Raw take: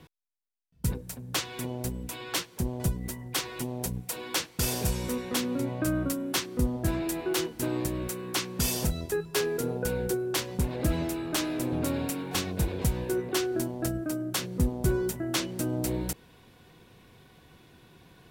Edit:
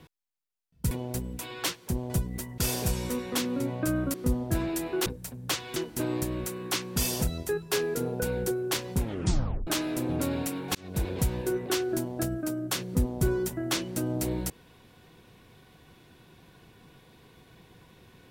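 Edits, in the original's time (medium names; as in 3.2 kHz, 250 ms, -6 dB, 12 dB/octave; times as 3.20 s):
0.91–1.61 s: move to 7.39 s
3.28–4.57 s: delete
6.13–6.47 s: delete
10.63 s: tape stop 0.67 s
12.38–12.67 s: fade in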